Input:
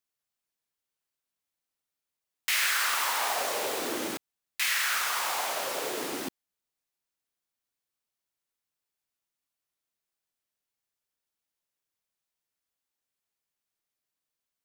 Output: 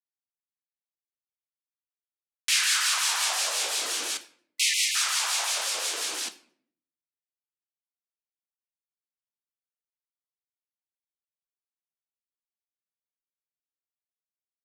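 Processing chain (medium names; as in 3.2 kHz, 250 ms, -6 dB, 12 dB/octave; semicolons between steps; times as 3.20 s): frequency weighting ITU-R 468; spectral selection erased 4.20–4.95 s, 370–1900 Hz; bass shelf 140 Hz -8.5 dB; band-stop 2 kHz, Q 14; in parallel at 0 dB: peak limiter -16.5 dBFS, peak gain reduction 10 dB; on the sum: bit crusher 10-bit; harmonic tremolo 5.7 Hz, depth 50%, crossover 1.9 kHz; on a send at -9 dB: reverberation RT60 0.60 s, pre-delay 4 ms; on the sum: vibrato with a chosen wave saw down 5.7 Hz, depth 160 cents; trim -6 dB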